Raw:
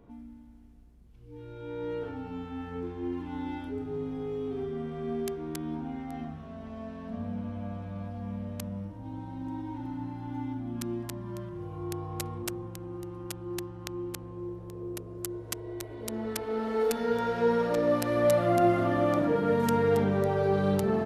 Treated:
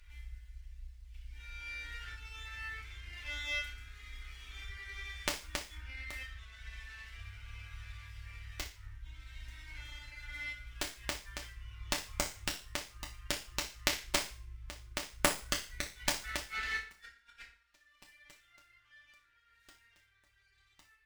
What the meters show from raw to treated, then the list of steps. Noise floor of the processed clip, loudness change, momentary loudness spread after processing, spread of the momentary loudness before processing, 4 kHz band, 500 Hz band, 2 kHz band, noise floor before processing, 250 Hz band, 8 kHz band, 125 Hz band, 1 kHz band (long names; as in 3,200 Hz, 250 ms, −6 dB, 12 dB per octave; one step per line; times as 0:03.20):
−70 dBFS, −8.0 dB, 18 LU, 15 LU, +6.5 dB, −20.0 dB, +2.5 dB, −48 dBFS, −20.5 dB, +3.0 dB, −14.0 dB, −12.0 dB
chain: gate with flip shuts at −21 dBFS, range −32 dB
inverse Chebyshev band-stop filter 130–800 Hz, stop band 50 dB
parametric band 2,100 Hz +3.5 dB 0.21 octaves
flutter between parallel walls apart 10.5 metres, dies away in 0.4 s
reverb reduction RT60 1.7 s
feedback delay network reverb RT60 0.5 s, low-frequency decay 1×, high-frequency decay 0.8×, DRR −4 dB
windowed peak hold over 3 samples
level +8.5 dB